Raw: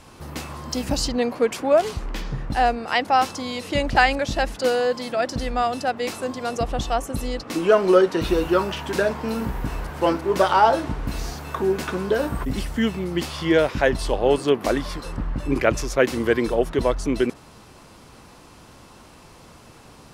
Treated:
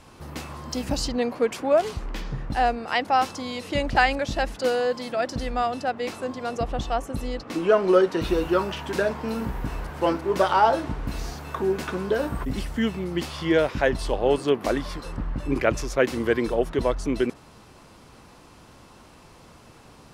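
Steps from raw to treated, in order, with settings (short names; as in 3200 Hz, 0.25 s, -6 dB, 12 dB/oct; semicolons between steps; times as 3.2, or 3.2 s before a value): high shelf 5400 Hz -3 dB, from 5.66 s -8.5 dB, from 7.94 s -3 dB; gain -2.5 dB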